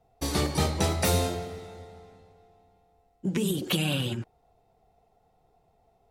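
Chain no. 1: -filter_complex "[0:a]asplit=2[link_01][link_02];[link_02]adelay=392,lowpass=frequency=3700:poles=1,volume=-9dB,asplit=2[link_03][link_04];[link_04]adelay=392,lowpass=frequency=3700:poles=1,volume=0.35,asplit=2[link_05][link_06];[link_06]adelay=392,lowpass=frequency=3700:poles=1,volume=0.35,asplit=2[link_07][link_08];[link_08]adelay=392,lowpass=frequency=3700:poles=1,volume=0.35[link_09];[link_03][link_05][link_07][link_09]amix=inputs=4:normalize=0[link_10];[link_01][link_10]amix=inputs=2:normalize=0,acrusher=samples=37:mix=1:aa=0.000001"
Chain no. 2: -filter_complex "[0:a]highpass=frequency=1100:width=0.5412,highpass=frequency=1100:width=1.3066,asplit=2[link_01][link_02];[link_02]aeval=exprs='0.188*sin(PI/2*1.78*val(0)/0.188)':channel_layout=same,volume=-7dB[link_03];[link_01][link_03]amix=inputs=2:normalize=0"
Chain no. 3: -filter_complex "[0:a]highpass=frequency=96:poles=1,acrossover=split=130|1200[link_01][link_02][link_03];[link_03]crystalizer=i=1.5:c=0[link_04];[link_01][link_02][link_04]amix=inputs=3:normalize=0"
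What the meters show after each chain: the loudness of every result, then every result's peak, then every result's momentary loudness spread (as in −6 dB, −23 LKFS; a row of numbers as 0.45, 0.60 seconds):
−29.0, −25.5, −26.0 LKFS; −12.5, −13.0, −9.0 dBFS; 18, 16, 16 LU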